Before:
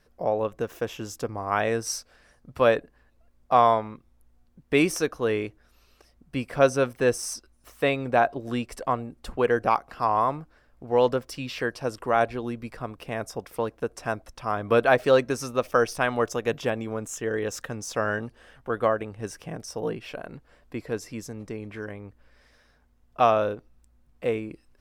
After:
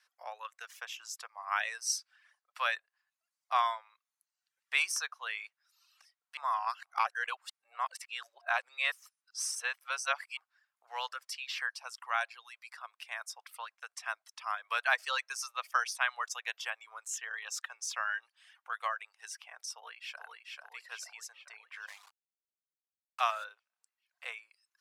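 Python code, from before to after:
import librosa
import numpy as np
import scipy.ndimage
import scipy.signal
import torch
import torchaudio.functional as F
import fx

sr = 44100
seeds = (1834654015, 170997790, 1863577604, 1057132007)

y = fx.highpass(x, sr, hz=460.0, slope=12, at=(11.59, 14.13))
y = fx.echo_throw(y, sr, start_s=19.73, length_s=0.51, ms=440, feedback_pct=60, wet_db=-3.0)
y = fx.sample_gate(y, sr, floor_db=-39.0, at=(21.87, 23.43), fade=0.02)
y = fx.edit(y, sr, fx.reverse_span(start_s=6.37, length_s=4.0), tone=tone)
y = scipy.signal.sosfilt(scipy.signal.bessel(6, 1500.0, 'highpass', norm='mag', fs=sr, output='sos'), y)
y = fx.dereverb_blind(y, sr, rt60_s=0.81)
y = scipy.signal.sosfilt(scipy.signal.bessel(2, 9900.0, 'lowpass', norm='mag', fs=sr, output='sos'), y)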